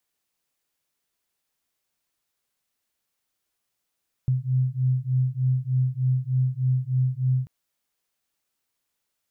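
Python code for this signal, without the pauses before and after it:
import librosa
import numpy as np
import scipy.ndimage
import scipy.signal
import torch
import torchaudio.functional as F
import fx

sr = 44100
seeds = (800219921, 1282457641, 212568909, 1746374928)

y = fx.two_tone_beats(sr, length_s=3.19, hz=127.0, beat_hz=3.3, level_db=-23.5)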